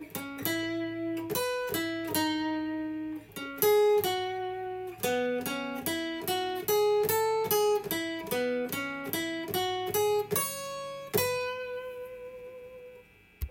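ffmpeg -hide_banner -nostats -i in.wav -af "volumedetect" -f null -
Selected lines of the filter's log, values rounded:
mean_volume: -30.9 dB
max_volume: -9.2 dB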